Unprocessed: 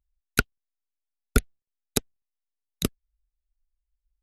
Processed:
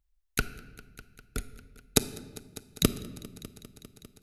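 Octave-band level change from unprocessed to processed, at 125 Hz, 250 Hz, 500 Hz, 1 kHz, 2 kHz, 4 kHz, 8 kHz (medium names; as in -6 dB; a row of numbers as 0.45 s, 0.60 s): -3.0 dB, -0.5 dB, -1.0 dB, -5.5 dB, -6.5 dB, +1.0 dB, +1.0 dB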